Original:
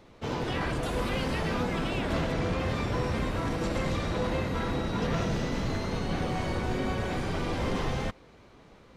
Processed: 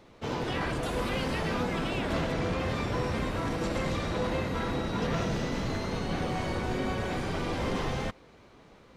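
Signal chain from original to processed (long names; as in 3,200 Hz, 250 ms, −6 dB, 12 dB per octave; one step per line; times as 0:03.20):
low-shelf EQ 120 Hz −3.5 dB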